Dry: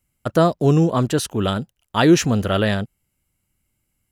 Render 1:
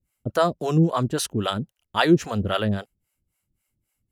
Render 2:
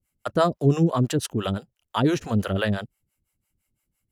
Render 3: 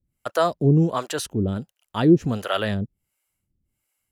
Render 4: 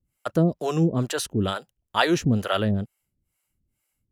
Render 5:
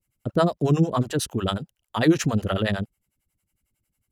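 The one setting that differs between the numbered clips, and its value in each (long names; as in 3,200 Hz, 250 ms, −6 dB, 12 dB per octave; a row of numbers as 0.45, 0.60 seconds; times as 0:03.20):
two-band tremolo in antiphase, speed: 3.7, 5.9, 1.4, 2.2, 11 Hertz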